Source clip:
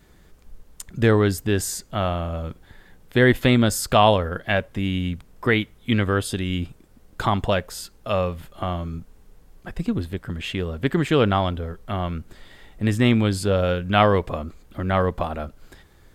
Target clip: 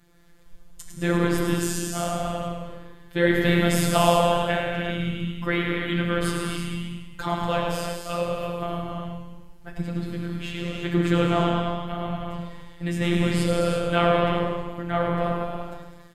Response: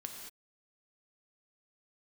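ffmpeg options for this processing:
-filter_complex "[0:a]asplit=8[link_01][link_02][link_03][link_04][link_05][link_06][link_07][link_08];[link_02]adelay=103,afreqshift=-44,volume=-7dB[link_09];[link_03]adelay=206,afreqshift=-88,volume=-11.7dB[link_10];[link_04]adelay=309,afreqshift=-132,volume=-16.5dB[link_11];[link_05]adelay=412,afreqshift=-176,volume=-21.2dB[link_12];[link_06]adelay=515,afreqshift=-220,volume=-25.9dB[link_13];[link_07]adelay=618,afreqshift=-264,volume=-30.7dB[link_14];[link_08]adelay=721,afreqshift=-308,volume=-35.4dB[link_15];[link_01][link_09][link_10][link_11][link_12][link_13][link_14][link_15]amix=inputs=8:normalize=0[link_16];[1:a]atrim=start_sample=2205,asetrate=28224,aresample=44100[link_17];[link_16][link_17]afir=irnorm=-1:irlink=0,afftfilt=real='hypot(re,im)*cos(PI*b)':imag='0':win_size=1024:overlap=0.75,flanger=delay=5.8:depth=7.7:regen=-65:speed=0.81:shape=sinusoidal,volume=4dB"

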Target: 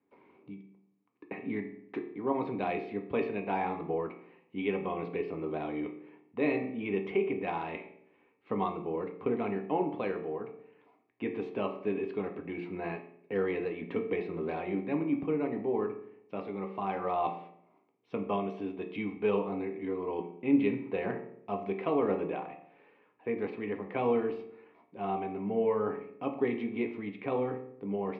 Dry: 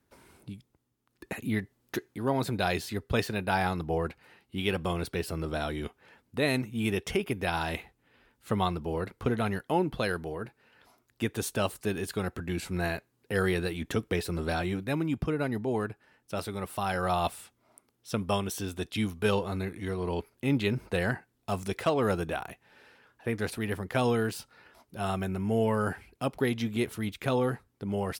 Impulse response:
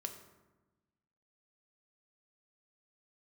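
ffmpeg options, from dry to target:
-filter_complex "[0:a]highpass=170,equalizer=frequency=190:width_type=q:width=4:gain=4,equalizer=frequency=300:width_type=q:width=4:gain=9,equalizer=frequency=460:width_type=q:width=4:gain=10,equalizer=frequency=1000:width_type=q:width=4:gain=9,equalizer=frequency=1500:width_type=q:width=4:gain=-8,equalizer=frequency=2300:width_type=q:width=4:gain=7,lowpass=frequency=2700:width=0.5412,lowpass=frequency=2700:width=1.3066[link_01];[1:a]atrim=start_sample=2205,asetrate=83790,aresample=44100[link_02];[link_01][link_02]afir=irnorm=-1:irlink=0"

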